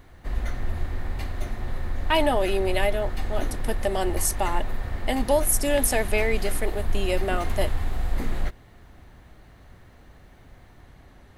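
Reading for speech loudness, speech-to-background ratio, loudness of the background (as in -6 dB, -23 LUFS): -26.0 LUFS, 7.0 dB, -33.0 LUFS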